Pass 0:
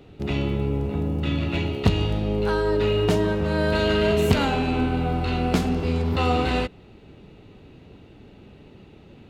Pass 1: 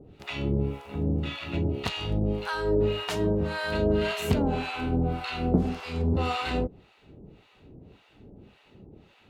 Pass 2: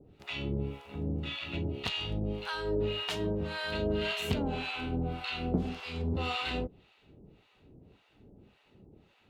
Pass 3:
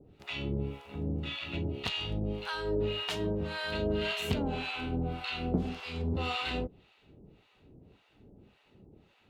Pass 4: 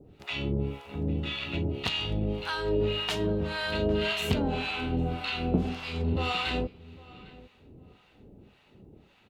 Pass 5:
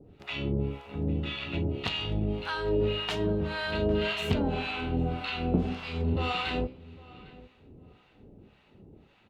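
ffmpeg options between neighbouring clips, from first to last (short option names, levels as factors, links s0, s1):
-filter_complex "[0:a]acrossover=split=740[s0][s1];[s0]aeval=exprs='val(0)*(1-1/2+1/2*cos(2*PI*1.8*n/s))':c=same[s2];[s1]aeval=exprs='val(0)*(1-1/2-1/2*cos(2*PI*1.8*n/s))':c=same[s3];[s2][s3]amix=inputs=2:normalize=0"
-af "adynamicequalizer=threshold=0.00316:dfrequency=3200:dqfactor=1.2:tfrequency=3200:tqfactor=1.2:attack=5:release=100:ratio=0.375:range=4:mode=boostabove:tftype=bell,volume=0.447"
-af anull
-filter_complex "[0:a]asplit=2[s0][s1];[s1]adelay=804,lowpass=f=2900:p=1,volume=0.0944,asplit=2[s2][s3];[s3]adelay=804,lowpass=f=2900:p=1,volume=0.22[s4];[s0][s2][s4]amix=inputs=3:normalize=0,volume=1.58"
-af "aemphasis=mode=reproduction:type=cd,bandreject=f=64.7:t=h:w=4,bandreject=f=129.4:t=h:w=4,bandreject=f=194.1:t=h:w=4,bandreject=f=258.8:t=h:w=4,bandreject=f=323.5:t=h:w=4,bandreject=f=388.2:t=h:w=4,bandreject=f=452.9:t=h:w=4,bandreject=f=517.6:t=h:w=4,bandreject=f=582.3:t=h:w=4,bandreject=f=647:t=h:w=4,bandreject=f=711.7:t=h:w=4,bandreject=f=776.4:t=h:w=4,bandreject=f=841.1:t=h:w=4,bandreject=f=905.8:t=h:w=4,bandreject=f=970.5:t=h:w=4,bandreject=f=1035.2:t=h:w=4"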